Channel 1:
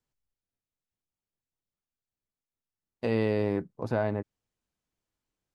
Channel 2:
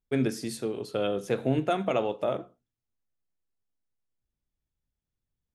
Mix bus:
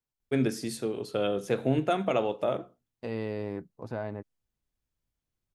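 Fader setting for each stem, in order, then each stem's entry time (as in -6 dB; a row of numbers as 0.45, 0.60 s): -7.0, 0.0 dB; 0.00, 0.20 s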